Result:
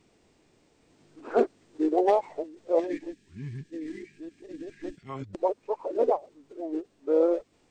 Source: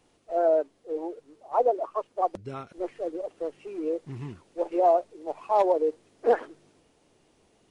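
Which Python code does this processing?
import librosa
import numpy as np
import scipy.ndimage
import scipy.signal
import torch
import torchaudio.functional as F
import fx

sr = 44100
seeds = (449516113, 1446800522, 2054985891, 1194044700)

y = x[::-1].copy()
y = fx.spec_box(y, sr, start_s=2.79, length_s=2.3, low_hz=450.0, high_hz=1600.0, gain_db=-16)
y = fx.formant_shift(y, sr, semitones=-3)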